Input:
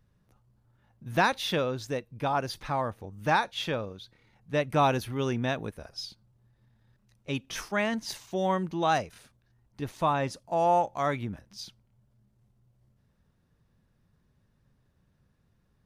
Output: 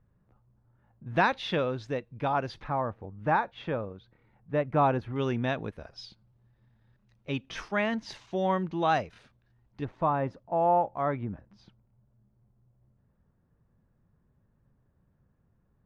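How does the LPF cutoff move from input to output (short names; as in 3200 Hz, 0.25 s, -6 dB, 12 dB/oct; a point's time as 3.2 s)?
1600 Hz
from 1.16 s 3200 Hz
from 2.64 s 1600 Hz
from 5.16 s 3600 Hz
from 9.85 s 1400 Hz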